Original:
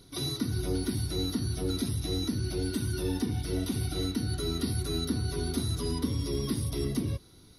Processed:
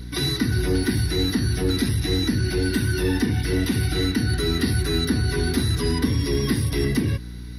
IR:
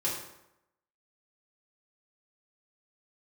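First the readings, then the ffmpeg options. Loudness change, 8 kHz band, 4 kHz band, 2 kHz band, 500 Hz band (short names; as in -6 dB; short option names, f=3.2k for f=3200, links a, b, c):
+9.0 dB, +6.0 dB, +9.0 dB, +17.0 dB, +8.5 dB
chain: -filter_complex "[0:a]superequalizer=8b=0.562:11b=3.55:12b=1.78:15b=0.562:16b=0.708,aeval=exprs='val(0)+0.00708*(sin(2*PI*60*n/s)+sin(2*PI*2*60*n/s)/2+sin(2*PI*3*60*n/s)/3+sin(2*PI*4*60*n/s)/4+sin(2*PI*5*60*n/s)/5)':c=same,asplit=2[a][b];[b]asoftclip=type=tanh:threshold=-29.5dB,volume=-7dB[c];[a][c]amix=inputs=2:normalize=0,volume=6.5dB"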